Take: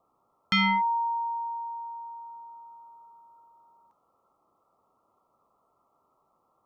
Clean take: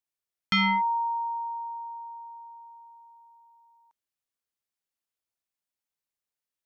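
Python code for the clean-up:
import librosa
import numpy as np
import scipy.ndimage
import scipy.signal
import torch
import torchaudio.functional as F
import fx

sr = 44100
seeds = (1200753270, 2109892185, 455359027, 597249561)

y = fx.noise_reduce(x, sr, print_start_s=0.0, print_end_s=0.5, reduce_db=19.0)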